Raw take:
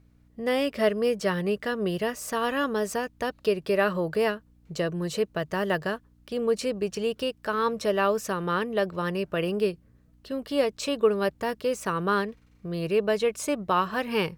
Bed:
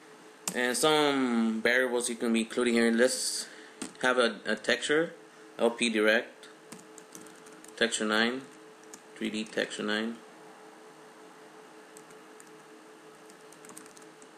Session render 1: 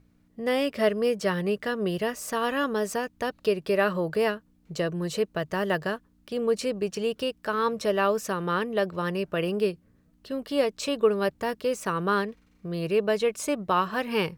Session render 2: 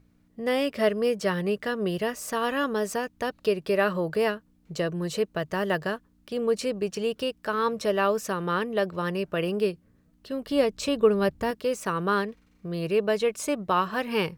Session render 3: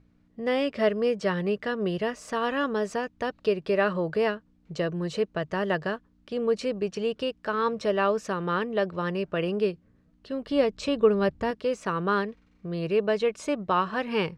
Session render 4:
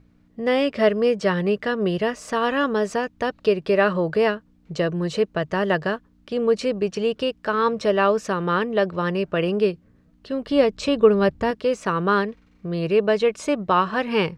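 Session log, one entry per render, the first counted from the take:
hum removal 60 Hz, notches 2
0:10.46–0:11.51: low-shelf EQ 170 Hz +11.5 dB
high-frequency loss of the air 92 metres
level +5.5 dB

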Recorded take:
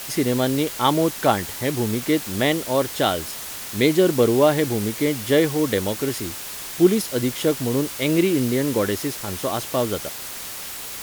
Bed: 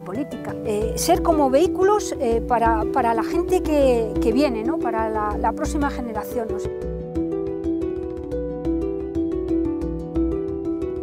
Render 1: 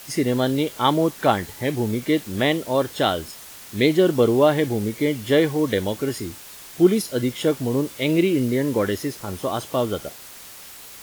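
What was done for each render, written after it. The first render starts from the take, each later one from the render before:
noise reduction from a noise print 8 dB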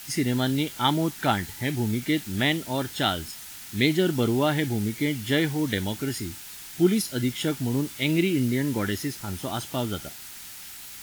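parametric band 510 Hz −13 dB 0.92 octaves
notch filter 1,100 Hz, Q 6.2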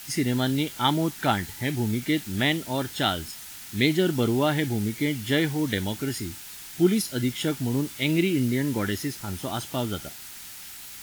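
no processing that can be heard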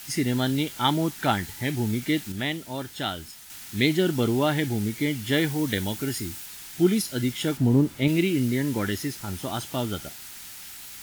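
0:02.32–0:03.50: clip gain −5 dB
0:05.33–0:06.46: high-shelf EQ 8,900 Hz +4.5 dB
0:07.57–0:08.08: tilt shelving filter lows +7 dB, about 1,300 Hz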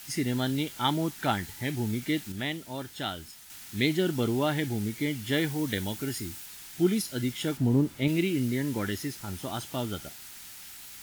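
level −4 dB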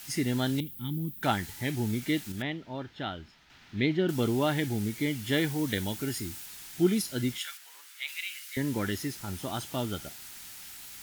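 0:00.60–0:01.23: drawn EQ curve 230 Hz 0 dB, 670 Hz −29 dB, 3,600 Hz −15 dB, 5,900 Hz −25 dB, 16,000 Hz +5 dB
0:02.42–0:04.09: high-frequency loss of the air 240 metres
0:07.38–0:08.57: high-pass filter 1,400 Hz 24 dB per octave

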